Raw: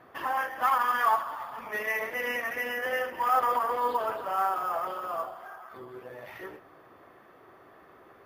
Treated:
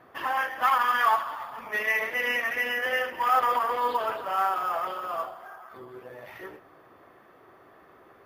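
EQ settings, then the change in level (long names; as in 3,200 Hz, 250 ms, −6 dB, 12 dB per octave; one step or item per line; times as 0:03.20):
dynamic equaliser 2,900 Hz, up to +7 dB, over −44 dBFS, Q 0.73
0.0 dB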